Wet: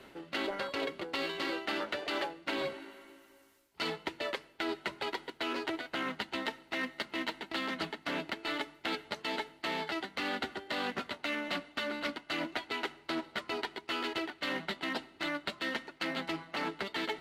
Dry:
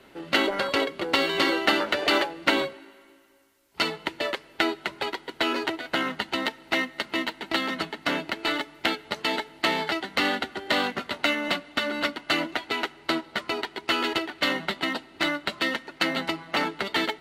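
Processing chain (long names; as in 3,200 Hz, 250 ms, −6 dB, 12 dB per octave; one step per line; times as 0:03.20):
reversed playback
downward compressor 6 to 1, threshold −33 dBFS, peak gain reduction 16.5 dB
reversed playback
highs frequency-modulated by the lows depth 0.12 ms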